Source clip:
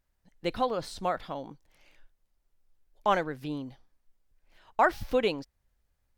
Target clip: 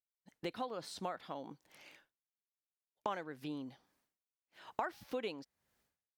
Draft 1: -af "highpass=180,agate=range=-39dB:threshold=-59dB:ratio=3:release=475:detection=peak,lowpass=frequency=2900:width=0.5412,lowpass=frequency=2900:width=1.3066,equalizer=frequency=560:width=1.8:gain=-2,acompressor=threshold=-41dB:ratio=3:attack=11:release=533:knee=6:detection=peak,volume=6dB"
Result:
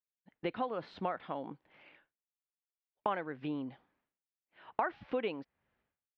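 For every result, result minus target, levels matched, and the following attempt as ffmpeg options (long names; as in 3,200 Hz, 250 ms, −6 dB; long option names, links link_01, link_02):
4,000 Hz band −6.5 dB; downward compressor: peak gain reduction −5 dB
-af "highpass=180,agate=range=-39dB:threshold=-59dB:ratio=3:release=475:detection=peak,equalizer=frequency=560:width=1.8:gain=-2,acompressor=threshold=-41dB:ratio=3:attack=11:release=533:knee=6:detection=peak,volume=6dB"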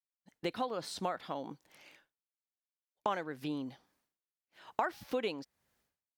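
downward compressor: peak gain reduction −5 dB
-af "highpass=180,agate=range=-39dB:threshold=-59dB:ratio=3:release=475:detection=peak,equalizer=frequency=560:width=1.8:gain=-2,acompressor=threshold=-48.5dB:ratio=3:attack=11:release=533:knee=6:detection=peak,volume=6dB"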